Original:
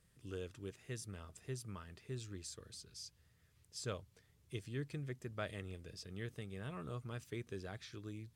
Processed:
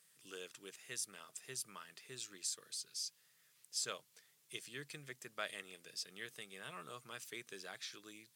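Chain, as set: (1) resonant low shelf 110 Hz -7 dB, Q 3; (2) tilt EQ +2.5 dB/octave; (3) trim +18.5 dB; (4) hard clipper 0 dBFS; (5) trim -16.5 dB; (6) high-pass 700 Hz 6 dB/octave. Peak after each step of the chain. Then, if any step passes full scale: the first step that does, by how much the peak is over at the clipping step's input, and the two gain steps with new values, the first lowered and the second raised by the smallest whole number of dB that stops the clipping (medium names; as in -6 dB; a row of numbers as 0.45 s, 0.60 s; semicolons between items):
-25.5 dBFS, -24.5 dBFS, -6.0 dBFS, -6.0 dBFS, -22.5 dBFS, -24.5 dBFS; nothing clips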